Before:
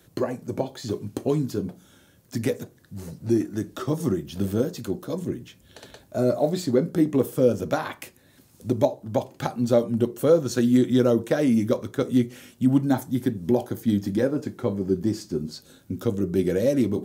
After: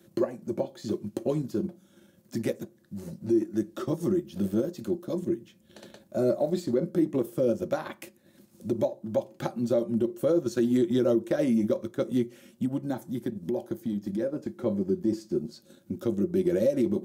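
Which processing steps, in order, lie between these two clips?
small resonant body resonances 210/340/540 Hz, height 16 dB, ringing for 85 ms; peak limiter -6 dBFS, peak gain reduction 7.5 dB; 12.65–14.66 s: compression 2:1, threshold -19 dBFS, peak gain reduction 5.5 dB; dynamic bell 210 Hz, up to -6 dB, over -29 dBFS, Q 1.9; high-pass 130 Hz 6 dB/octave; peaking EQ 500 Hz -4 dB 0.97 oct; transient shaper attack -1 dB, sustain -5 dB; trim -5 dB

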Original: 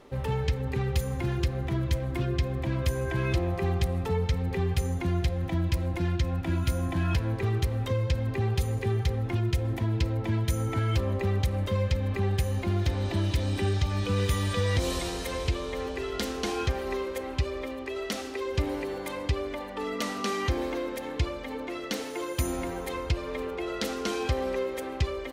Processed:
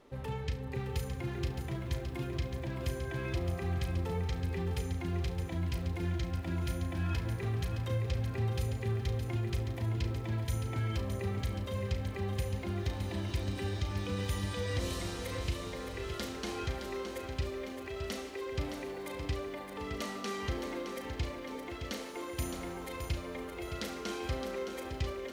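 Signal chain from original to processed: on a send: flutter echo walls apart 6 m, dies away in 0.25 s; on the sum: bit-crushed delay 616 ms, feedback 55%, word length 9-bit, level -7.5 dB; trim -8 dB

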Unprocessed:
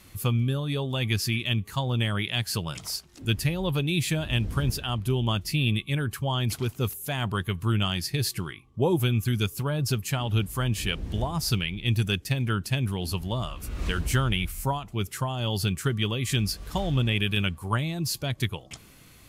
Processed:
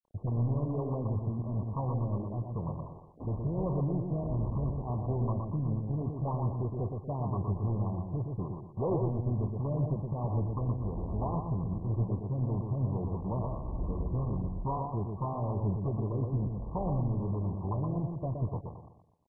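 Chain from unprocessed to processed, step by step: in parallel at 0 dB: compression 8:1, threshold -33 dBFS, peak gain reduction 14 dB; on the sum: bit crusher 6-bit; hard clipper -21 dBFS, distortion -12 dB; feedback delay 120 ms, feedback 37%, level -4.5 dB; trim -6.5 dB; MP2 8 kbps 24 kHz

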